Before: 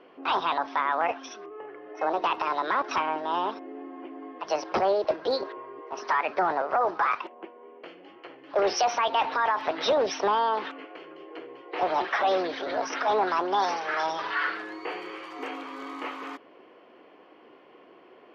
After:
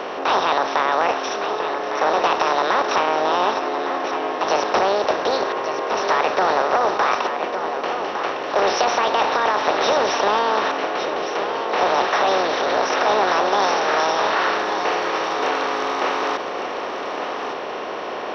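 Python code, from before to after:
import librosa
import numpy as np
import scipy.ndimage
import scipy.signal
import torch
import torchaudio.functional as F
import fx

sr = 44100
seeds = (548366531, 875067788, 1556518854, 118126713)

y = fx.bin_compress(x, sr, power=0.4)
y = y + 10.0 ** (-8.5 / 20.0) * np.pad(y, (int(1158 * sr / 1000.0), 0))[:len(y)]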